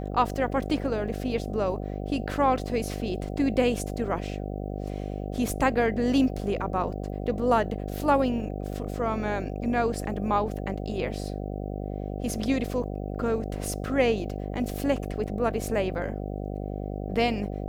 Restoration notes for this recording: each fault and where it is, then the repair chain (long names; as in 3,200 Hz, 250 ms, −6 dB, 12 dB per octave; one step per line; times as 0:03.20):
mains buzz 50 Hz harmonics 15 −33 dBFS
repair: hum removal 50 Hz, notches 15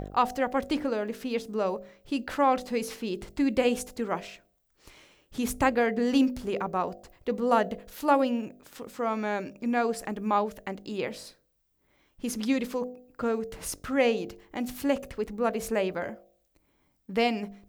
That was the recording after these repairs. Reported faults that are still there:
none of them is left